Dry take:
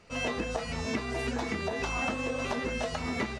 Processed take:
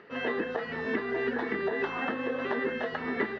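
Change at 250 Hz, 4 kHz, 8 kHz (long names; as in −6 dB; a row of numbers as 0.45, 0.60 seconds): +0.5 dB, −6.0 dB, below −20 dB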